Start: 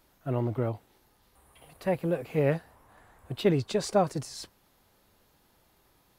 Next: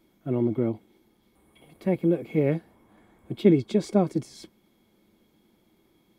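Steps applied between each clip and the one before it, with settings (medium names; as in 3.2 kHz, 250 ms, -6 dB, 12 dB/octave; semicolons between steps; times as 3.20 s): small resonant body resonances 220/320/2200/3300 Hz, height 17 dB, ringing for 45 ms; trim -6.5 dB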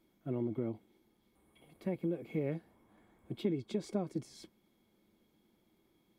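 compression 3:1, threshold -24 dBFS, peak gain reduction 9.5 dB; trim -8 dB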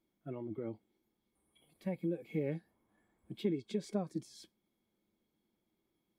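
spectral noise reduction 10 dB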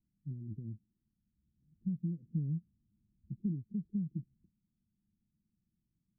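inverse Chebyshev low-pass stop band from 810 Hz, stop band 70 dB; trim +8 dB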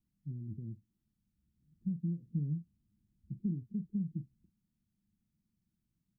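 doubling 41 ms -12.5 dB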